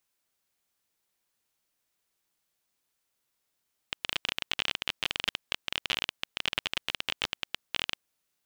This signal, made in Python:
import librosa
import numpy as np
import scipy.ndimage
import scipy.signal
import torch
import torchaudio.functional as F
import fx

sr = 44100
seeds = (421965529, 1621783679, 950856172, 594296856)

y = fx.geiger_clicks(sr, seeds[0], length_s=4.13, per_s=23.0, level_db=-11.0)